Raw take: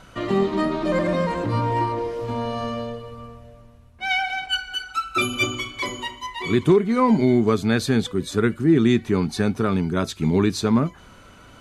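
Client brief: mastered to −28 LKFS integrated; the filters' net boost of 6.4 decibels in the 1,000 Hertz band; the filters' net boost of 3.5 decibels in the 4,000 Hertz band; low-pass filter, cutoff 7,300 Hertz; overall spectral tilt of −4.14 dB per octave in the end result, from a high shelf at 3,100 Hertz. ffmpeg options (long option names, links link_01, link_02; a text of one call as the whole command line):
ffmpeg -i in.wav -af "lowpass=7300,equalizer=frequency=1000:width_type=o:gain=7.5,highshelf=frequency=3100:gain=-4,equalizer=frequency=4000:width_type=o:gain=7.5,volume=-7.5dB" out.wav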